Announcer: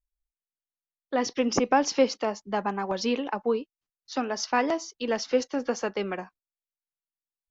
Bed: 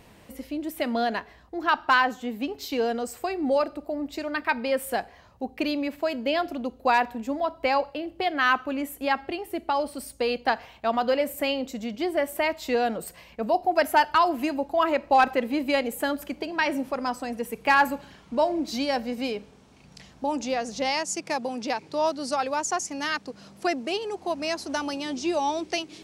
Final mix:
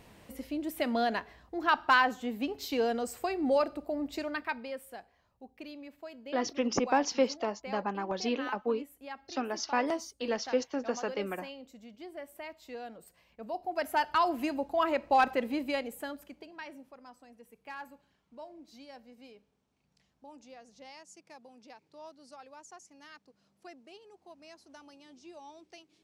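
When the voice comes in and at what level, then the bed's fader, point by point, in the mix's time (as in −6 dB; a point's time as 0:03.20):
5.20 s, −5.0 dB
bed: 0:04.21 −3.5 dB
0:04.92 −18.5 dB
0:13.11 −18.5 dB
0:14.27 −5.5 dB
0:15.49 −5.5 dB
0:16.98 −24 dB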